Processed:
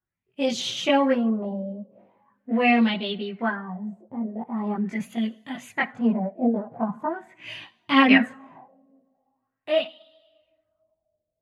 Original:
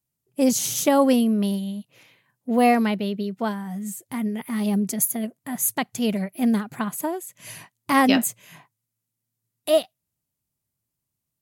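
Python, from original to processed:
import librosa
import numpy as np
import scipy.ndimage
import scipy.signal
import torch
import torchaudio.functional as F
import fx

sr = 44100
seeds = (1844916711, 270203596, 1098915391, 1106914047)

y = fx.rev_double_slope(x, sr, seeds[0], early_s=0.52, late_s=2.1, knee_db=-17, drr_db=15.0)
y = fx.filter_lfo_lowpass(y, sr, shape='sine', hz=0.42, low_hz=570.0, high_hz=3500.0, q=4.2)
y = fx.chorus_voices(y, sr, voices=6, hz=0.26, base_ms=20, depth_ms=3.1, mix_pct=60)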